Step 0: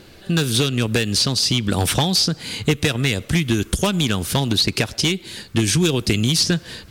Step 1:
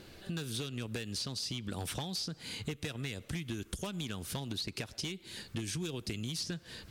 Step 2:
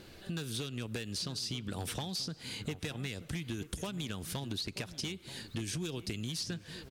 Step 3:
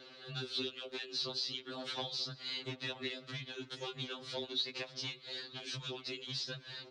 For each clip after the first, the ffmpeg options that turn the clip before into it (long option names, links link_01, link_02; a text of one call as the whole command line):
ffmpeg -i in.wav -af "acompressor=threshold=-33dB:ratio=2.5,volume=-8dB" out.wav
ffmpeg -i in.wav -filter_complex "[0:a]asplit=2[link_01][link_02];[link_02]adelay=932.9,volume=-13dB,highshelf=frequency=4000:gain=-21[link_03];[link_01][link_03]amix=inputs=2:normalize=0" out.wav
ffmpeg -i in.wav -af "highpass=frequency=210:width=0.5412,highpass=frequency=210:width=1.3066,equalizer=frequency=250:width_type=q:width=4:gain=-9,equalizer=frequency=480:width_type=q:width=4:gain=6,equalizer=frequency=1300:width_type=q:width=4:gain=4,equalizer=frequency=4000:width_type=q:width=4:gain=8,lowpass=frequency=5200:width=0.5412,lowpass=frequency=5200:width=1.3066,afreqshift=-27,afftfilt=real='re*2.45*eq(mod(b,6),0)':imag='im*2.45*eq(mod(b,6),0)':win_size=2048:overlap=0.75,volume=1.5dB" out.wav